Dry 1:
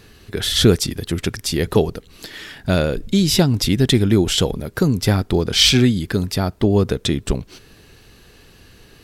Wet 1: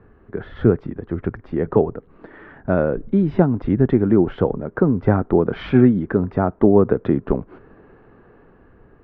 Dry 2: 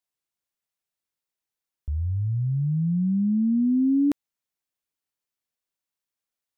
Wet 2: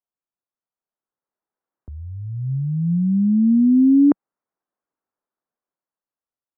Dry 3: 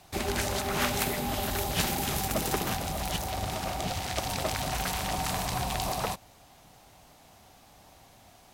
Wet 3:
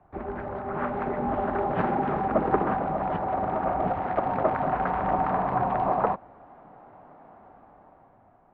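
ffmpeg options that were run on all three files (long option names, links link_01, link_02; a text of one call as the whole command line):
ffmpeg -i in.wav -filter_complex "[0:a]lowpass=frequency=1400:width=0.5412,lowpass=frequency=1400:width=1.3066,acrossover=split=180[link_01][link_02];[link_01]flanger=delay=0.1:depth=9.2:regen=37:speed=0.79:shape=triangular[link_03];[link_02]dynaudnorm=framelen=330:gausssize=7:maxgain=10.5dB[link_04];[link_03][link_04]amix=inputs=2:normalize=0,volume=-1.5dB" out.wav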